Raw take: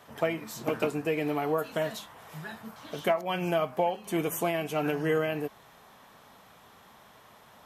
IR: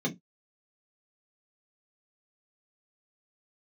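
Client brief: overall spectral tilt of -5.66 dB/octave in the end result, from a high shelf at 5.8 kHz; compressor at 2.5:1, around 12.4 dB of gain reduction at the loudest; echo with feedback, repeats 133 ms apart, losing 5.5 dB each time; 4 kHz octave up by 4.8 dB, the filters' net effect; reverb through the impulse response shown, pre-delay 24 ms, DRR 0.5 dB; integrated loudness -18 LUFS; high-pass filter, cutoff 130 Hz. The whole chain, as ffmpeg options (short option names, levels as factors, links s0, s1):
-filter_complex "[0:a]highpass=130,equalizer=f=4000:t=o:g=4.5,highshelf=f=5800:g=7.5,acompressor=threshold=0.00891:ratio=2.5,aecho=1:1:133|266|399|532|665|798|931:0.531|0.281|0.149|0.079|0.0419|0.0222|0.0118,asplit=2[s0][s1];[1:a]atrim=start_sample=2205,adelay=24[s2];[s1][s2]afir=irnorm=-1:irlink=0,volume=0.447[s3];[s0][s3]amix=inputs=2:normalize=0,volume=5.31"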